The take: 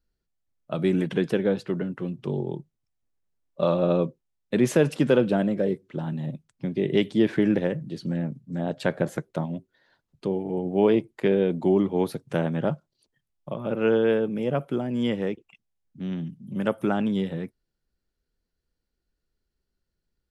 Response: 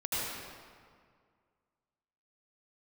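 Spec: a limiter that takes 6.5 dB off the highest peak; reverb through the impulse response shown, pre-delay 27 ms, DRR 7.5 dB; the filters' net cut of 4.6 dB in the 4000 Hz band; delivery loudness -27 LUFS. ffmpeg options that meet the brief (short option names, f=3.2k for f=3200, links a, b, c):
-filter_complex "[0:a]equalizer=f=4k:t=o:g=-6.5,alimiter=limit=-15dB:level=0:latency=1,asplit=2[a][b];[1:a]atrim=start_sample=2205,adelay=27[c];[b][c]afir=irnorm=-1:irlink=0,volume=-14.5dB[d];[a][d]amix=inputs=2:normalize=0,volume=0.5dB"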